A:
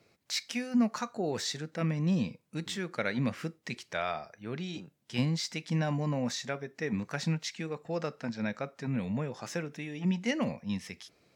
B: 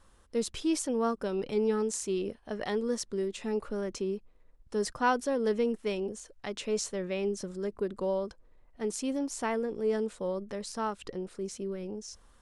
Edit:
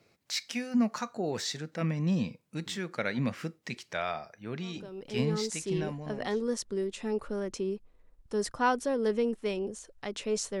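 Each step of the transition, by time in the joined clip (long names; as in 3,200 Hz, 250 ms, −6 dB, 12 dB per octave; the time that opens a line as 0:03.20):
A
0:05.52: continue with B from 0:01.93, crossfade 1.86 s equal-power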